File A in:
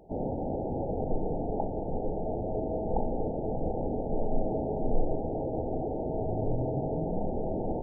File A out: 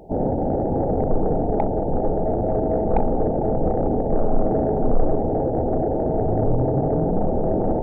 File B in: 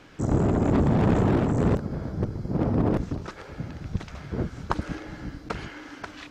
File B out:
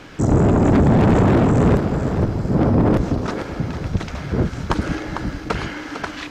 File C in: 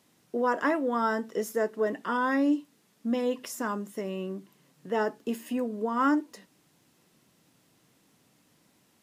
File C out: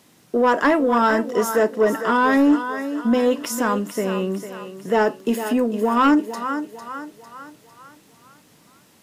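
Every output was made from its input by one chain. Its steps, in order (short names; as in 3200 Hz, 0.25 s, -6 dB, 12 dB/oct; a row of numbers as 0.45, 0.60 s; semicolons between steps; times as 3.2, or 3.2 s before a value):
thinning echo 0.451 s, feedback 49%, high-pass 300 Hz, level -10 dB; soft clip -19.5 dBFS; normalise peaks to -9 dBFS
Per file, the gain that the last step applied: +11.0, +10.5, +11.0 dB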